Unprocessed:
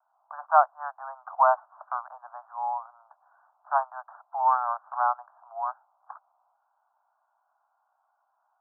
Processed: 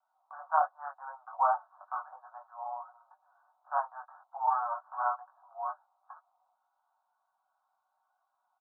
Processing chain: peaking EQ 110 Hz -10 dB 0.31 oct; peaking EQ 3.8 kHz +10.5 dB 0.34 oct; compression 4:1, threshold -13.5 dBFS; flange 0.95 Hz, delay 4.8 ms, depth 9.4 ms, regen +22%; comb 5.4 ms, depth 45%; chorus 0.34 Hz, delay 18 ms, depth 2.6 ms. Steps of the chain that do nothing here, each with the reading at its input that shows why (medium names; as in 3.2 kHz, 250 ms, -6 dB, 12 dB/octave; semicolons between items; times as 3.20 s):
peaking EQ 110 Hz: input has nothing below 510 Hz; peaking EQ 3.8 kHz: input has nothing above 1.7 kHz